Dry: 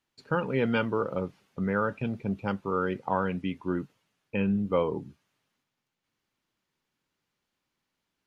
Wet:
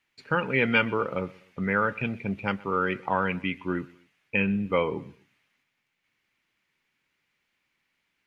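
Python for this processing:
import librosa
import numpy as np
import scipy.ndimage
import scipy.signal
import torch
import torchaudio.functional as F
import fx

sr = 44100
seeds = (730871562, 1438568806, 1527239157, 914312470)

p1 = fx.peak_eq(x, sr, hz=2200.0, db=13.5, octaves=0.98)
y = p1 + fx.echo_feedback(p1, sr, ms=125, feedback_pct=35, wet_db=-22.5, dry=0)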